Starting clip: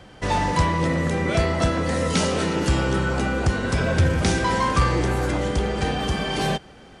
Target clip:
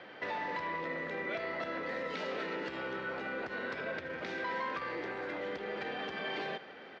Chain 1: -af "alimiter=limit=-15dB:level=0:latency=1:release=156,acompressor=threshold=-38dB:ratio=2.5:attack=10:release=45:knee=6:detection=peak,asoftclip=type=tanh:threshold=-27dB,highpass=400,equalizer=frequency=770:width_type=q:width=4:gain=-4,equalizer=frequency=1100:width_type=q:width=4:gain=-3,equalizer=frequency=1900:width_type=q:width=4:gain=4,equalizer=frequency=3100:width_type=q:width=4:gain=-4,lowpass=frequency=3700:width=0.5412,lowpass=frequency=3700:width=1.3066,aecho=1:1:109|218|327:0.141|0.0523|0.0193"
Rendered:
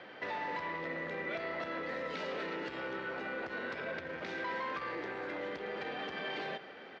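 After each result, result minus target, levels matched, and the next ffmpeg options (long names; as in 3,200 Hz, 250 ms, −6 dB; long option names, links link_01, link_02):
soft clipping: distortion +18 dB; echo 32 ms late
-af "alimiter=limit=-15dB:level=0:latency=1:release=156,acompressor=threshold=-38dB:ratio=2.5:attack=10:release=45:knee=6:detection=peak,asoftclip=type=tanh:threshold=-17dB,highpass=400,equalizer=frequency=770:width_type=q:width=4:gain=-4,equalizer=frequency=1100:width_type=q:width=4:gain=-3,equalizer=frequency=1900:width_type=q:width=4:gain=4,equalizer=frequency=3100:width_type=q:width=4:gain=-4,lowpass=frequency=3700:width=0.5412,lowpass=frequency=3700:width=1.3066,aecho=1:1:109|218|327:0.141|0.0523|0.0193"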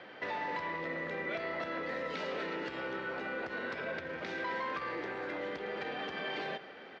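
echo 32 ms late
-af "alimiter=limit=-15dB:level=0:latency=1:release=156,acompressor=threshold=-38dB:ratio=2.5:attack=10:release=45:knee=6:detection=peak,asoftclip=type=tanh:threshold=-17dB,highpass=400,equalizer=frequency=770:width_type=q:width=4:gain=-4,equalizer=frequency=1100:width_type=q:width=4:gain=-3,equalizer=frequency=1900:width_type=q:width=4:gain=4,equalizer=frequency=3100:width_type=q:width=4:gain=-4,lowpass=frequency=3700:width=0.5412,lowpass=frequency=3700:width=1.3066,aecho=1:1:77|154|231:0.141|0.0523|0.0193"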